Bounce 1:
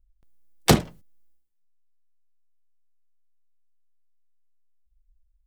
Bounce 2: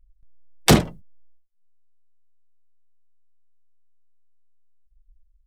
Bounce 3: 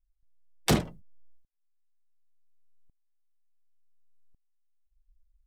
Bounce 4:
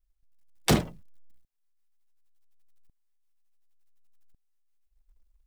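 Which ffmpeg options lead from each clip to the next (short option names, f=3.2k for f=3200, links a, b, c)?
-af "alimiter=limit=-11dB:level=0:latency=1:release=17,afftdn=nr=22:nf=-49,volume=8dB"
-af "aeval=exprs='val(0)*pow(10,-19*if(lt(mod(-0.69*n/s,1),2*abs(-0.69)/1000),1-mod(-0.69*n/s,1)/(2*abs(-0.69)/1000),(mod(-0.69*n/s,1)-2*abs(-0.69)/1000)/(1-2*abs(-0.69)/1000))/20)':c=same"
-af "acrusher=bits=7:mode=log:mix=0:aa=0.000001,volume=1.5dB"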